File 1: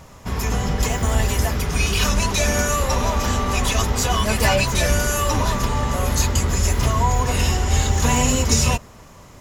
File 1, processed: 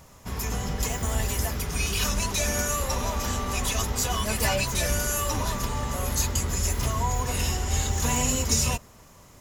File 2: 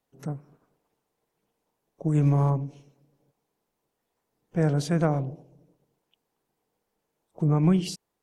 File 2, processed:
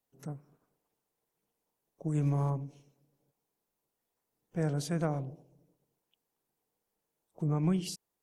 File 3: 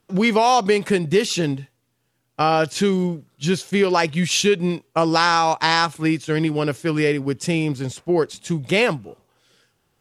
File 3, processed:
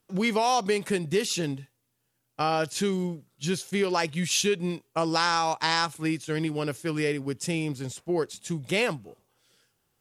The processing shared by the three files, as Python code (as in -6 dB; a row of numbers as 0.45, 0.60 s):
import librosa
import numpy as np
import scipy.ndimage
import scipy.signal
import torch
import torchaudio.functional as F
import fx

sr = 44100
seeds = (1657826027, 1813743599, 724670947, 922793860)

y = fx.high_shelf(x, sr, hz=7000.0, db=9.5)
y = y * librosa.db_to_amplitude(-8.0)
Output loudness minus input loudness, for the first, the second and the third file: -6.5, -7.5, -7.5 LU